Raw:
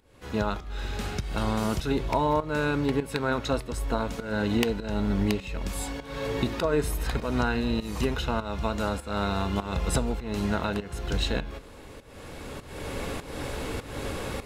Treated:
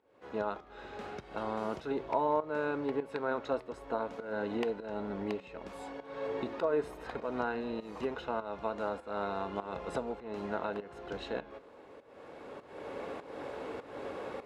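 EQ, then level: band-pass filter 480 Hz, Q 0.78; bass shelf 360 Hz -11 dB; 0.0 dB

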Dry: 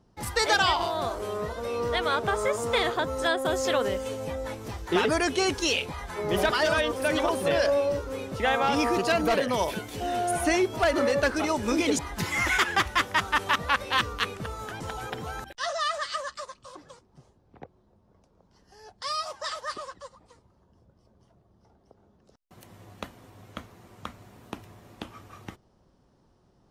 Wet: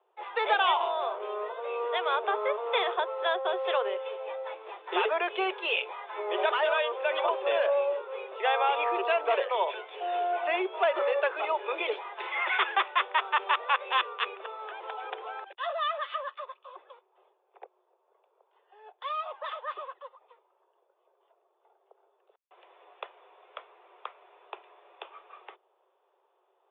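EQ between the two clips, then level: steep high-pass 370 Hz 96 dB/octave; rippled Chebyshev low-pass 3.6 kHz, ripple 6 dB; +1.0 dB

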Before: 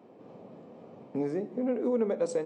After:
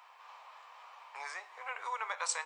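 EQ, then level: elliptic high-pass 980 Hz, stop band 80 dB; +12.0 dB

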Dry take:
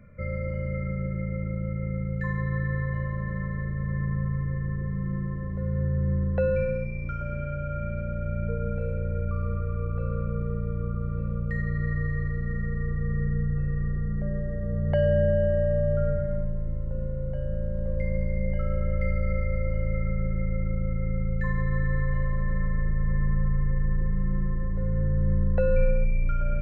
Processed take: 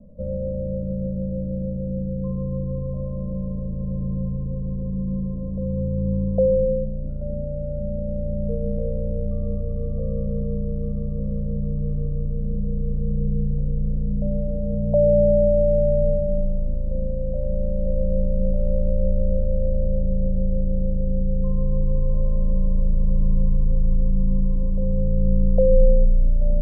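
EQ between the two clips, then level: steep low-pass 910 Hz 72 dB/octave; distance through air 420 m; static phaser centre 560 Hz, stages 8; +8.5 dB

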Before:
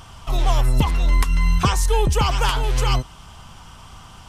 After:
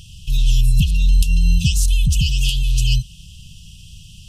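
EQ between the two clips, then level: brick-wall FIR band-stop 210–2500 Hz; +3.5 dB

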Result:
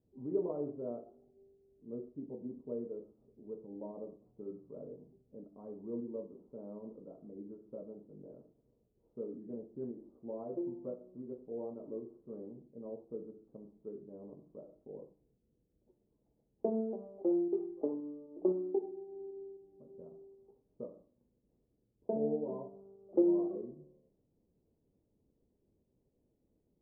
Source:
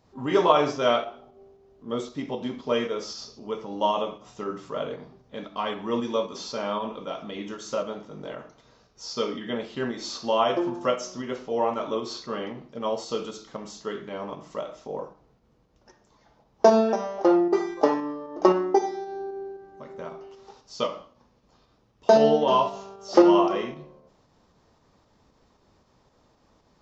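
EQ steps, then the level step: four-pole ladder low-pass 520 Hz, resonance 30%; distance through air 360 m; -6.5 dB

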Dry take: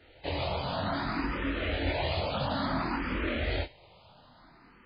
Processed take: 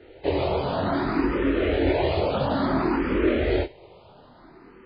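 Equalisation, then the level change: low-pass 2.6 kHz 6 dB/octave; peaking EQ 390 Hz +13.5 dB 0.75 oct; +4.5 dB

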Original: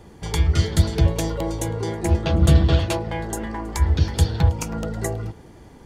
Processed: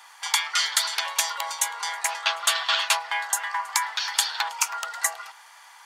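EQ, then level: steep high-pass 930 Hz 36 dB/octave; +8.5 dB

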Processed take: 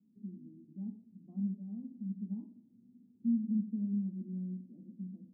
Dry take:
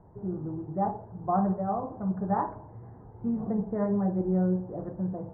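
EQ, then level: Butterworth band-pass 230 Hz, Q 4.5; distance through air 480 m; 0.0 dB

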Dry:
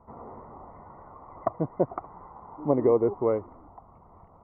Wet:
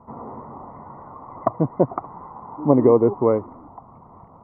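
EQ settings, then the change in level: graphic EQ 125/250/500/1000/2000 Hz +10/+10/+4/+9/+4 dB; -2.0 dB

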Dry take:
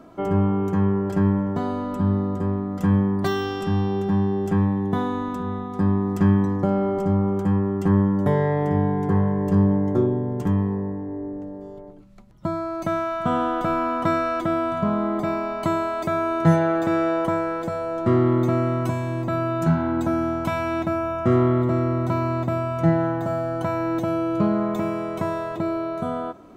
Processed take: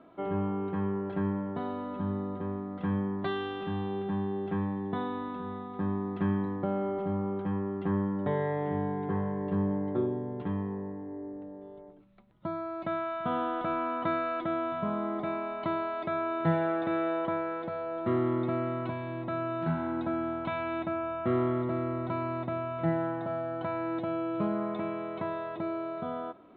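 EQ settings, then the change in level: Chebyshev low-pass 3.8 kHz, order 5; bass shelf 86 Hz -7 dB; bass shelf 200 Hz -6 dB; -6.5 dB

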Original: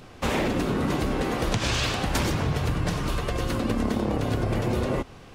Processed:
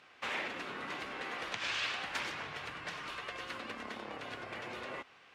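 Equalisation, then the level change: band-pass filter 2.1 kHz, Q 1.1; -4.5 dB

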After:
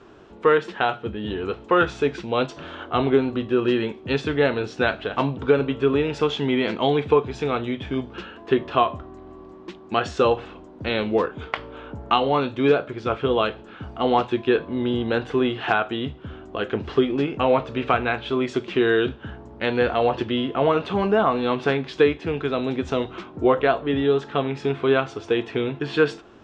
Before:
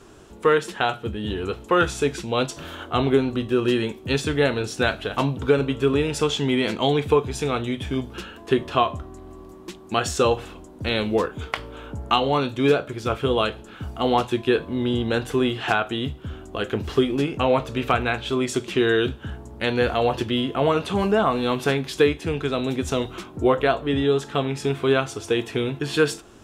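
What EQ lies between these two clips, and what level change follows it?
distance through air 150 m; bass shelf 130 Hz -9.5 dB; treble shelf 7.6 kHz -11 dB; +2.0 dB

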